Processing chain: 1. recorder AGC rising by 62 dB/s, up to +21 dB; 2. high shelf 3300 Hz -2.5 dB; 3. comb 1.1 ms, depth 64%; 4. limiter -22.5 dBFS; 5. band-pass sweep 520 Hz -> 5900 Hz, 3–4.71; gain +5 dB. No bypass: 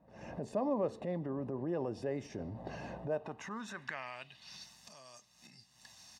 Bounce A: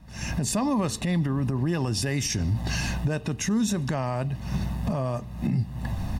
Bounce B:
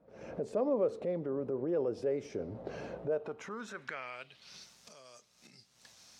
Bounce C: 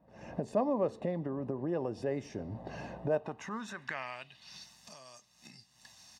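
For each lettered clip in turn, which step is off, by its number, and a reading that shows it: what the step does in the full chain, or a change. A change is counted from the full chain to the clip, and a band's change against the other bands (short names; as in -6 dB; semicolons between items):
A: 5, 500 Hz band -11.5 dB; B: 3, 500 Hz band +5.5 dB; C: 4, momentary loudness spread change +1 LU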